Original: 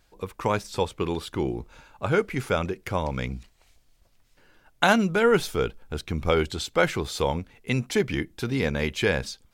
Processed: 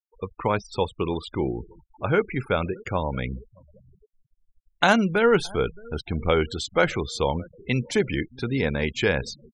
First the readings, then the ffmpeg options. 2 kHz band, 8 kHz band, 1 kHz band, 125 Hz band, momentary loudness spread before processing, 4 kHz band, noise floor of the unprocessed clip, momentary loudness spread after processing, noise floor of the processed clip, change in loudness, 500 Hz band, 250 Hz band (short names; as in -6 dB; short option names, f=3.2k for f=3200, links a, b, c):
+1.0 dB, -2.0 dB, +1.0 dB, +1.0 dB, 11 LU, +0.5 dB, -62 dBFS, 11 LU, -73 dBFS, +1.0 dB, +1.0 dB, +1.0 dB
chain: -filter_complex "[0:a]asplit=2[a][b];[b]adelay=618,lowpass=f=1.5k:p=1,volume=-23dB,asplit=2[c][d];[d]adelay=618,lowpass=f=1.5k:p=1,volume=0.53,asplit=2[e][f];[f]adelay=618,lowpass=f=1.5k:p=1,volume=0.53,asplit=2[g][h];[h]adelay=618,lowpass=f=1.5k:p=1,volume=0.53[i];[a][c][e][g][i]amix=inputs=5:normalize=0,afftfilt=real='re*gte(hypot(re,im),0.0178)':imag='im*gte(hypot(re,im),0.0178)':win_size=1024:overlap=0.75,volume=1dB"